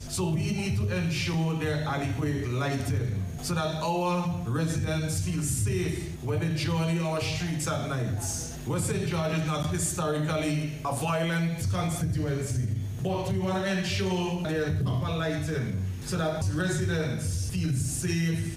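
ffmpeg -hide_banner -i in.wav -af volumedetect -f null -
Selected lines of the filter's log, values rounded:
mean_volume: -28.2 dB
max_volume: -15.2 dB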